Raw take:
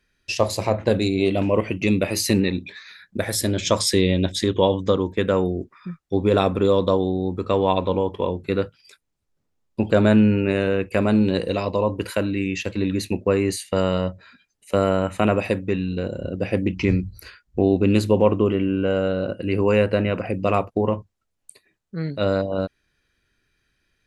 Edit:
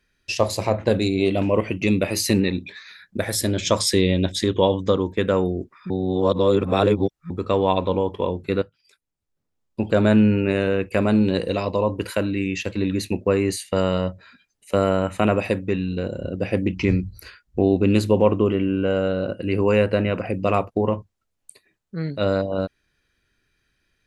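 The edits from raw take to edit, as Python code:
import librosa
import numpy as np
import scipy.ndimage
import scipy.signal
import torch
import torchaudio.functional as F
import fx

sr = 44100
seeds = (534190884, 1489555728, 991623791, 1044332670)

y = fx.edit(x, sr, fx.reverse_span(start_s=5.9, length_s=1.4),
    fx.fade_in_from(start_s=8.62, length_s=1.63, floor_db=-13.0), tone=tone)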